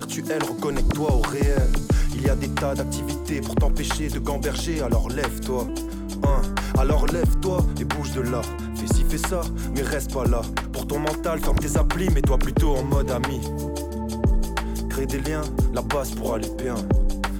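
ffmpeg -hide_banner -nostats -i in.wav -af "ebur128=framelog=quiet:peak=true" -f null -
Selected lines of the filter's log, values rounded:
Integrated loudness:
  I:         -24.7 LUFS
  Threshold: -34.7 LUFS
Loudness range:
  LRA:         1.9 LU
  Threshold: -44.7 LUFS
  LRA low:   -25.7 LUFS
  LRA high:  -23.8 LUFS
True peak:
  Peak:      -11.8 dBFS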